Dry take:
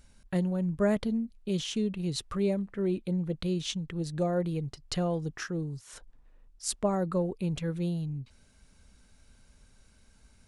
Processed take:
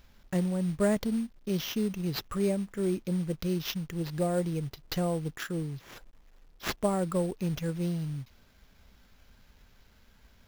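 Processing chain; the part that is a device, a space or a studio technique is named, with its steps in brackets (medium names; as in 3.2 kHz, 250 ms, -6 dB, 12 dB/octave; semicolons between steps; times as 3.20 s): early companding sampler (sample-rate reducer 8.9 kHz, jitter 0%; companded quantiser 6-bit)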